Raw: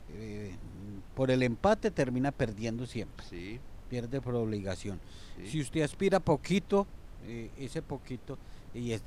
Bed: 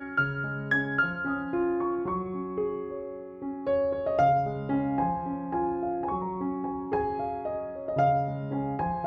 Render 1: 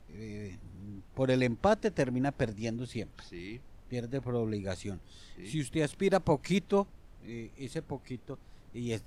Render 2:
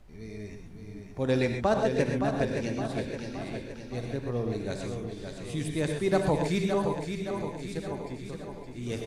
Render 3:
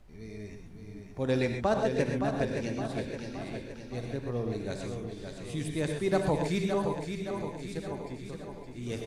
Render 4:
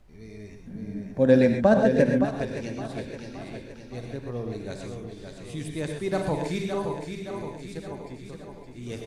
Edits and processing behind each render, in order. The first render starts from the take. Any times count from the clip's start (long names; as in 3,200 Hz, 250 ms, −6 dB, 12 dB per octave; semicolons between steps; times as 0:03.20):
noise reduction from a noise print 6 dB
repeating echo 568 ms, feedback 54%, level −6.5 dB; reverb whose tail is shaped and stops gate 150 ms rising, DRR 3.5 dB
level −2 dB
0:00.66–0:02.24: hollow resonant body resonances 220/540/1,600 Hz, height 15 dB → 12 dB, ringing for 25 ms; 0:06.09–0:07.58: double-tracking delay 43 ms −8 dB